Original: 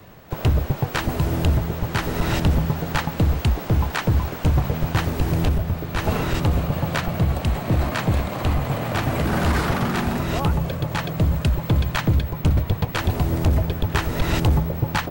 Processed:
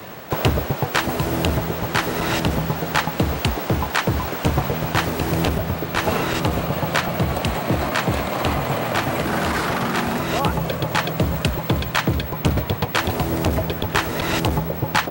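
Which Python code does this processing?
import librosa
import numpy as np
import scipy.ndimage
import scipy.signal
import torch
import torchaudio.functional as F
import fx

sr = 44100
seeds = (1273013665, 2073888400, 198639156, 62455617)

y = fx.highpass(x, sr, hz=290.0, slope=6)
y = fx.rider(y, sr, range_db=10, speed_s=0.5)
y = y * librosa.db_to_amplitude(5.5)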